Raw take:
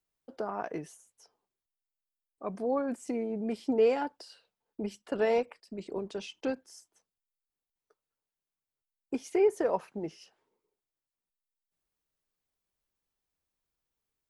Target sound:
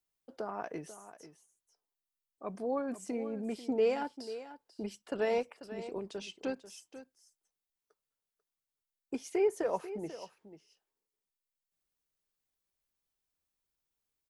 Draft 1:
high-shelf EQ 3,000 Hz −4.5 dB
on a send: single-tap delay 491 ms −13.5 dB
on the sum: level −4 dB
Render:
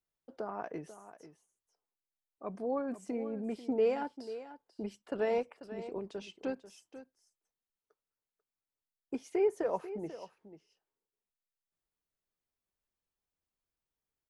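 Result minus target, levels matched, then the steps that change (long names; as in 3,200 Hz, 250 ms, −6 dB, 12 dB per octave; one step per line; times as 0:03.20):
8,000 Hz band −7.5 dB
change: high-shelf EQ 3,000 Hz +4.5 dB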